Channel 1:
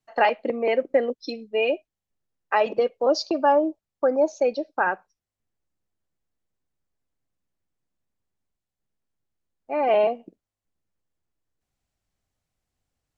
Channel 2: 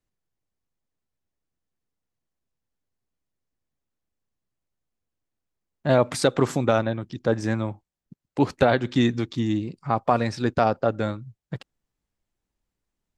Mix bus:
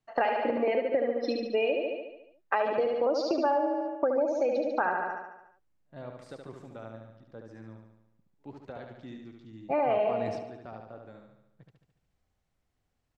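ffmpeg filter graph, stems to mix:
-filter_complex "[0:a]deesser=0.55,volume=1.5dB,asplit=3[a][b][c];[b]volume=-4.5dB[d];[1:a]volume=-9dB,asplit=2[e][f];[f]volume=-15.5dB[g];[c]apad=whole_len=581161[h];[e][h]sidechaingate=range=-51dB:threshold=-50dB:ratio=16:detection=peak[i];[d][g]amix=inputs=2:normalize=0,aecho=0:1:72|144|216|288|360|432|504|576|648:1|0.57|0.325|0.185|0.106|0.0602|0.0343|0.0195|0.0111[j];[a][i][j]amix=inputs=3:normalize=0,highshelf=f=4.6k:g=-10.5,acompressor=threshold=-24dB:ratio=6"

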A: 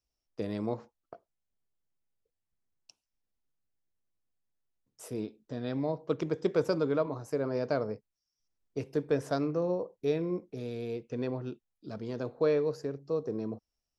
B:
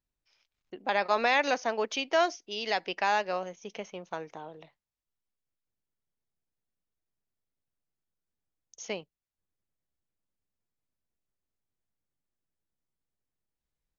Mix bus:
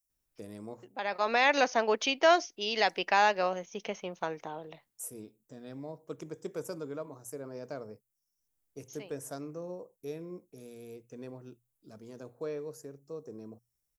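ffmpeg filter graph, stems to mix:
-filter_complex "[0:a]bandreject=f=60:t=h:w=6,bandreject=f=120:t=h:w=6,aexciter=amount=11.7:drive=3.1:freq=6.4k,volume=-10.5dB,asplit=2[a][b];[1:a]adelay=100,volume=2.5dB[c];[b]apad=whole_len=620941[d];[c][d]sidechaincompress=threshold=-51dB:ratio=10:attack=16:release=834[e];[a][e]amix=inputs=2:normalize=0"

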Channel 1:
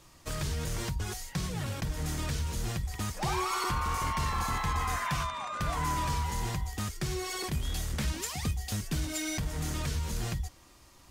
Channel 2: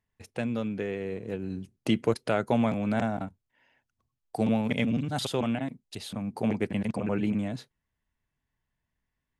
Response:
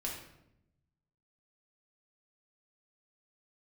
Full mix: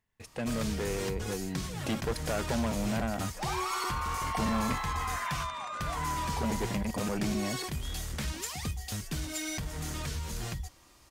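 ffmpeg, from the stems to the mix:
-filter_complex "[0:a]adelay=200,volume=-1dB[a];[1:a]asoftclip=type=tanh:threshold=-28dB,volume=2dB,asplit=3[b][c][d];[b]atrim=end=4.75,asetpts=PTS-STARTPTS,afade=t=out:st=4.746:d=0.004:c=hsin[e];[c]atrim=start=4.75:end=6.28,asetpts=PTS-STARTPTS,volume=0[f];[d]atrim=start=6.28,asetpts=PTS-STARTPTS,afade=t=in:d=0.004:c=hsin[g];[e][f][g]concat=n=3:v=0:a=1[h];[a][h]amix=inputs=2:normalize=0,lowshelf=f=370:g=-3"

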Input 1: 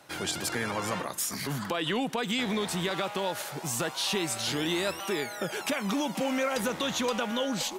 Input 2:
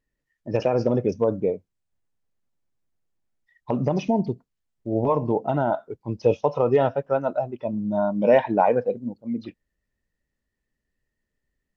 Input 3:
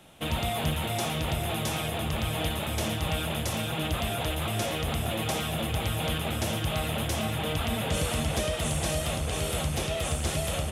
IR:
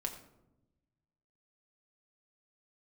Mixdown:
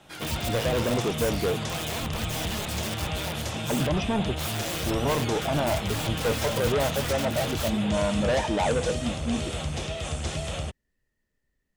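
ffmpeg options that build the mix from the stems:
-filter_complex "[0:a]adynamicequalizer=threshold=0.00708:dfrequency=3900:dqfactor=0.85:tfrequency=3900:tqfactor=0.85:attack=5:release=100:ratio=0.375:range=2.5:mode=boostabove:tftype=bell,aeval=exprs='(mod(15.8*val(0)+1,2)-1)/15.8':c=same,volume=-5.5dB,asplit=3[a][b][c];[a]atrim=end=3.87,asetpts=PTS-STARTPTS,afade=t=out:st=3.866:d=0.004:c=hsin[d];[b]atrim=start=3.87:end=4.37,asetpts=PTS-STARTPTS,volume=0[e];[c]atrim=start=4.37,asetpts=PTS-STARTPTS,afade=t=in:d=0.004:c=hsin[f];[d][e][f]concat=n=3:v=0:a=1,asplit=2[g][h];[h]volume=-19dB[i];[1:a]acontrast=39,asoftclip=type=tanh:threshold=-18dB,volume=-4dB[j];[2:a]lowpass=f=8k:w=0.5412,lowpass=f=8k:w=1.3066,acrossover=split=190|3000[k][l][m];[l]acompressor=threshold=-31dB:ratio=6[n];[k][n][m]amix=inputs=3:normalize=0,volume=-1dB[o];[3:a]atrim=start_sample=2205[p];[i][p]afir=irnorm=-1:irlink=0[q];[g][j][o][q]amix=inputs=4:normalize=0"

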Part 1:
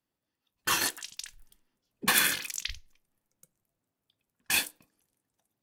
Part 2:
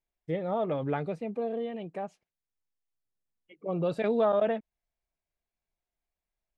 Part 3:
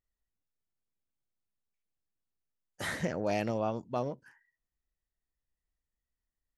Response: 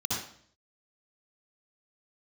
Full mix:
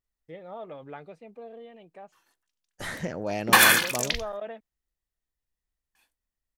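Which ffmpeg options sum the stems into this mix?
-filter_complex "[0:a]equalizer=f=950:t=o:w=1.9:g=8,acontrast=89,adelay=1450,volume=-2dB[a];[1:a]agate=range=-33dB:threshold=-49dB:ratio=3:detection=peak,lowshelf=f=370:g=-10.5,volume=-7dB[b];[2:a]volume=0.5dB,asplit=2[c][d];[d]apad=whole_len=312041[e];[a][e]sidechaingate=range=-49dB:threshold=-59dB:ratio=16:detection=peak[f];[f][b][c]amix=inputs=3:normalize=0"

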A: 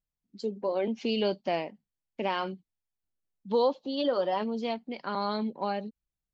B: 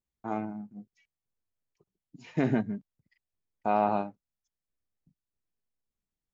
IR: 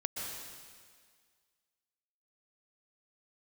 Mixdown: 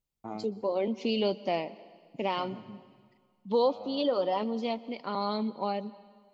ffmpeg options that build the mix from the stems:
-filter_complex "[0:a]volume=-1dB,asplit=3[a][b][c];[b]volume=-18dB[d];[1:a]acompressor=threshold=-37dB:ratio=2,volume=-2dB,asplit=2[e][f];[f]volume=-21dB[g];[c]apad=whole_len=279579[h];[e][h]sidechaincompress=threshold=-42dB:ratio=8:attack=16:release=442[i];[2:a]atrim=start_sample=2205[j];[d][g]amix=inputs=2:normalize=0[k];[k][j]afir=irnorm=-1:irlink=0[l];[a][i][l]amix=inputs=3:normalize=0,equalizer=f=1.6k:w=7.1:g=-14.5"

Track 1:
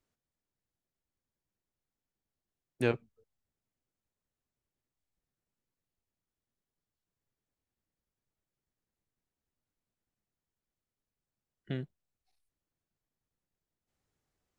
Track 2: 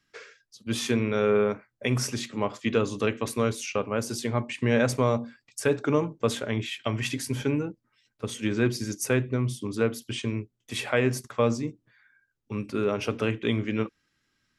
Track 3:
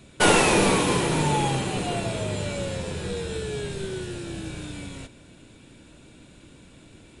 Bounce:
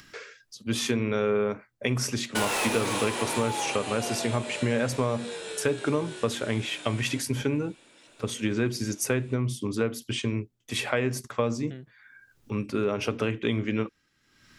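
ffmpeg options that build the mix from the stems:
-filter_complex "[0:a]volume=-5.5dB[a];[1:a]acompressor=mode=upward:threshold=-42dB:ratio=2.5,volume=2.5dB[b];[2:a]highpass=510,asoftclip=type=hard:threshold=-22dB,adelay=2150,volume=-1.5dB[c];[a][b][c]amix=inputs=3:normalize=0,acompressor=threshold=-23dB:ratio=3"

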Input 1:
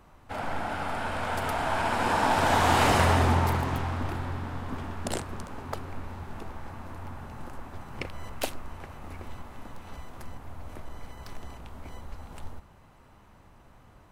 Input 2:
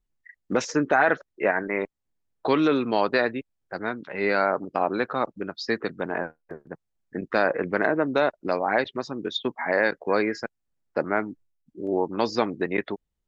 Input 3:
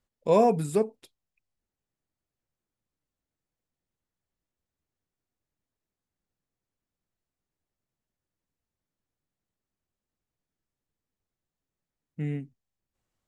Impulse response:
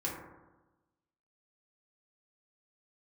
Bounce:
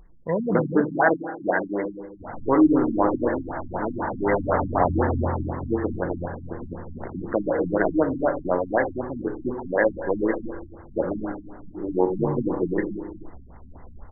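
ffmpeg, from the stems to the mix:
-filter_complex "[0:a]adelay=1900,volume=-2dB[a];[1:a]acompressor=mode=upward:threshold=-34dB:ratio=2.5,volume=-1.5dB,asplit=2[b][c];[c]volume=-5dB[d];[2:a]equalizer=f=110:w=1.1:g=11.5,volume=-5.5dB,asplit=2[e][f];[f]volume=-12.5dB[g];[3:a]atrim=start_sample=2205[h];[d][g]amix=inputs=2:normalize=0[i];[i][h]afir=irnorm=-1:irlink=0[j];[a][b][e][j]amix=inputs=4:normalize=0,afftfilt=real='re*lt(b*sr/1024,280*pow(2200/280,0.5+0.5*sin(2*PI*4*pts/sr)))':imag='im*lt(b*sr/1024,280*pow(2200/280,0.5+0.5*sin(2*PI*4*pts/sr)))':win_size=1024:overlap=0.75"

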